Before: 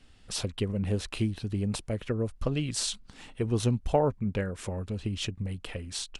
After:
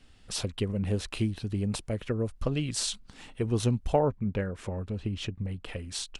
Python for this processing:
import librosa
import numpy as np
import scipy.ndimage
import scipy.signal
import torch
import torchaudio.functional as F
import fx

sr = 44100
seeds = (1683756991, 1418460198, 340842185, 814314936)

y = fx.high_shelf(x, sr, hz=4400.0, db=-10.5, at=(3.99, 5.68))